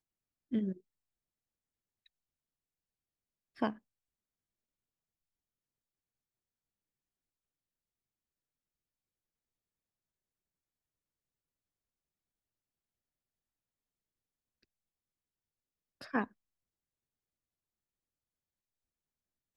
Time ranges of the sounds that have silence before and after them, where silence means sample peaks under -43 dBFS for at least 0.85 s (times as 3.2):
3.59–3.73
16.01–16.25